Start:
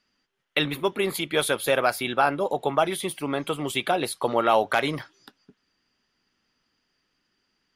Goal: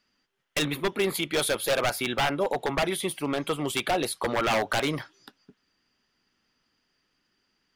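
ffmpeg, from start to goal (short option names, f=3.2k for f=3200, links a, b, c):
-af "aeval=exprs='0.126*(abs(mod(val(0)/0.126+3,4)-2)-1)':c=same"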